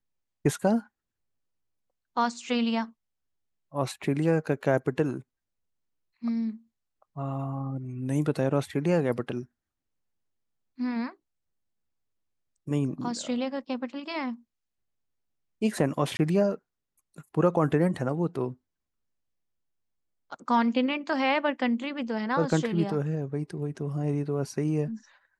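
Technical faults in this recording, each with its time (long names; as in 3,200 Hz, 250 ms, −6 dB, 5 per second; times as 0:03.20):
0:16.17–0:16.19: drop-out 20 ms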